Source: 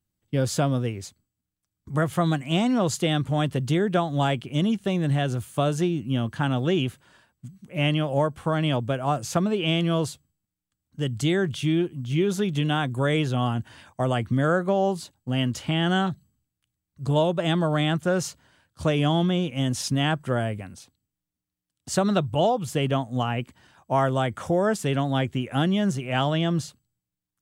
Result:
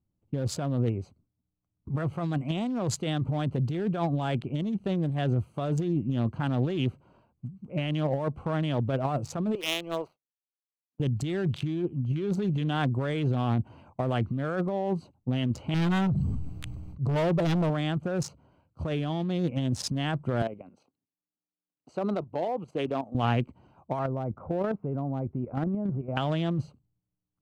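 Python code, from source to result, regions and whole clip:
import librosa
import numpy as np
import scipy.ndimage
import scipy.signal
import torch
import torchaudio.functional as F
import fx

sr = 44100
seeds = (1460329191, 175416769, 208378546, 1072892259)

y = fx.chain(x, sr, fx.dead_time(dead_ms=0.063),
    fx.highpass(hz=510.0, slope=12),
    fx.power_curve(exponent=1.4), at=(9.55, 11.0))
y = fx.chain(y, sr, fx.low_shelf(hz=66.0, db=11.0),
    fx.clip_hard(threshold_db=-24.5),
    fx.sustainer(db_per_s=21.0), at=(15.74, 17.7))
y = fx.chain(y, sr, fx.highpass(hz=300.0, slope=12),
    fx.high_shelf(hz=9900.0, db=-9.0),
    fx.level_steps(step_db=10), at=(20.42, 23.15))
y = fx.chain(y, sr, fx.lowpass(hz=1600.0, slope=24),
    fx.level_steps(step_db=11), at=(23.99, 26.17))
y = fx.wiener(y, sr, points=25)
y = fx.over_compress(y, sr, threshold_db=-27.0, ratio=-1.0)
y = fx.high_shelf(y, sr, hz=6000.0, db=-6.0)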